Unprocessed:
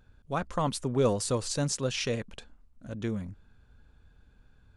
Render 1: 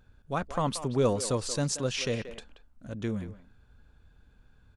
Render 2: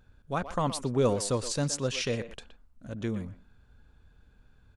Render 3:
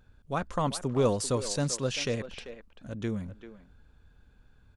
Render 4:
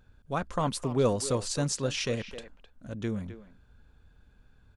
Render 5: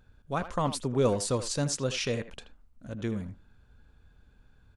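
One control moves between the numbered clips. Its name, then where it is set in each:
far-end echo of a speakerphone, delay time: 180, 120, 390, 260, 80 milliseconds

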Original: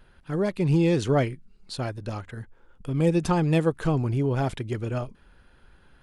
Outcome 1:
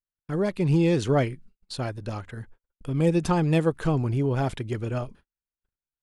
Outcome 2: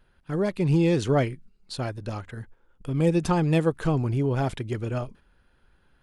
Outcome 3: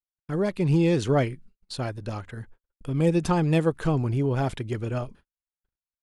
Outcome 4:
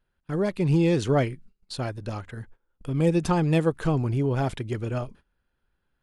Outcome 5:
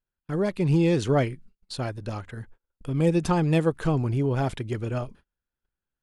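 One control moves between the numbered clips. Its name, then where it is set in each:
noise gate, range: −46, −7, −59, −20, −34 decibels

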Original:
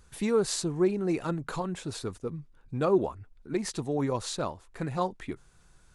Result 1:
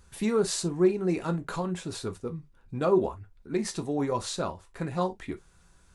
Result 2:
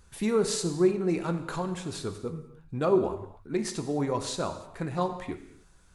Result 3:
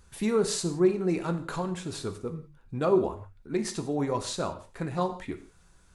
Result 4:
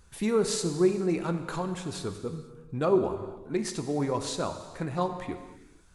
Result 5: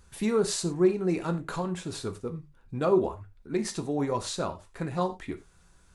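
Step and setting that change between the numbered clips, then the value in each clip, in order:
reverb whose tail is shaped and stops, gate: 80, 330, 200, 520, 130 milliseconds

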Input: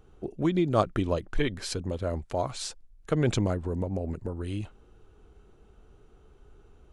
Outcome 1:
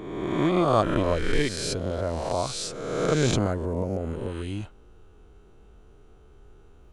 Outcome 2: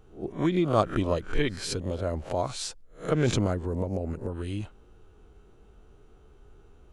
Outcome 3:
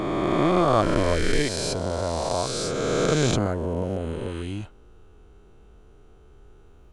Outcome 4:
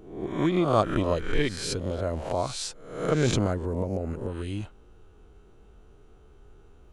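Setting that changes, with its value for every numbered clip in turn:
peak hold with a rise ahead of every peak, rising 60 dB in: 1.38, 0.3, 3.19, 0.65 seconds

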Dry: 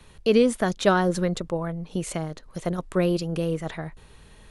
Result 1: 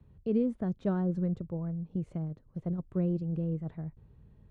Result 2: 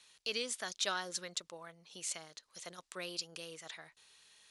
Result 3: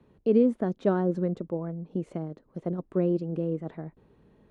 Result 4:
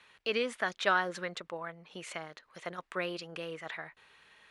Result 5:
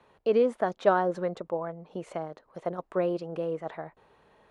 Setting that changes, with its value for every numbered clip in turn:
resonant band-pass, frequency: 110, 5,600, 280, 2,000, 720 Hertz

